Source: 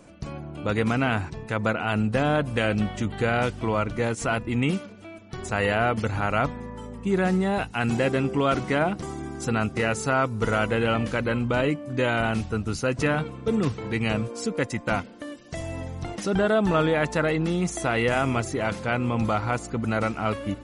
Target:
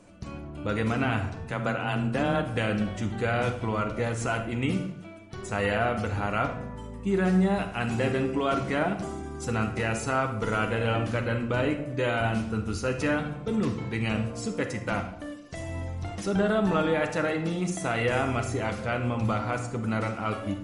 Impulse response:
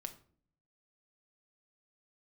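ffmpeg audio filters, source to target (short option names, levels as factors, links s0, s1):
-filter_complex "[0:a]asettb=1/sr,asplit=3[s0][s1][s2];[s0]atrim=end=1.364[s3];[s1]atrim=start=1.36:end=2.44,asetpts=PTS-STARTPTS,afade=t=in:d=0.004:c=qsin,afade=t=out:st=1.076:d=0.004:c=qsin,afreqshift=16[s4];[s2]atrim=start=2.436[s5];[s3][s4]acrossfade=d=0.004:c1=hsin:c2=qsin[s6];[s6][s5]acrossfade=d=0.004:c1=qsin:c2=hsin[s7];[1:a]atrim=start_sample=2205,afade=t=out:st=0.26:d=0.01,atrim=end_sample=11907,asetrate=23814,aresample=44100[s8];[s7][s8]afir=irnorm=-1:irlink=0,volume=0.668"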